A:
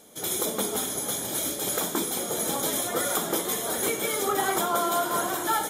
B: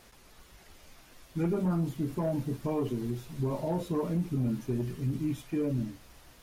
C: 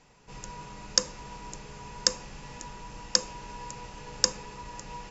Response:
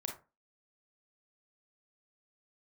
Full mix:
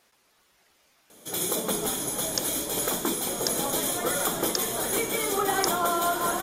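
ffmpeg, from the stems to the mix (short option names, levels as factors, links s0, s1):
-filter_complex "[0:a]adelay=1100,volume=1[s0];[1:a]highpass=f=470:p=1,volume=0.501[s1];[2:a]adelay=1400,volume=0.473[s2];[s0][s1][s2]amix=inputs=3:normalize=0"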